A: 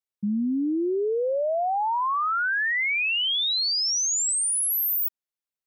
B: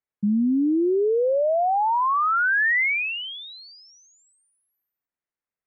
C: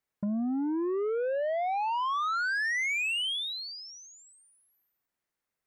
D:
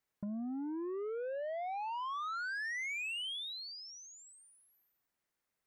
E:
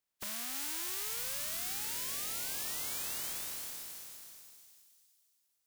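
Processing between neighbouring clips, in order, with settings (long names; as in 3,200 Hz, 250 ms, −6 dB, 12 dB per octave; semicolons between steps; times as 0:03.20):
Chebyshev low-pass filter 2,100 Hz, order 3; level +4.5 dB
downward compressor 10 to 1, threshold −30 dBFS, peak gain reduction 11 dB; soft clipping −32.5 dBFS, distortion −16 dB; level +5.5 dB
downward compressor 1.5 to 1, threshold −56 dBFS, peak gain reduction 9.5 dB
compressing power law on the bin magnitudes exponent 0.11; delay with a high-pass on its return 324 ms, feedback 41%, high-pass 4,700 Hz, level −3 dB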